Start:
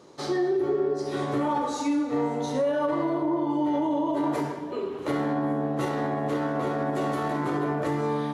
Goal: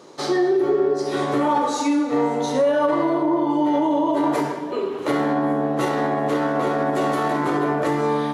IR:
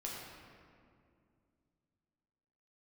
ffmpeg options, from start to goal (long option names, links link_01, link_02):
-af "highpass=frequency=240:poles=1,volume=7.5dB"